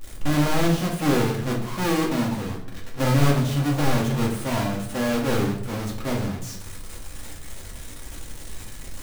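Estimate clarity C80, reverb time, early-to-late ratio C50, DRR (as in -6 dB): 10.5 dB, 0.70 s, 6.5 dB, -1.5 dB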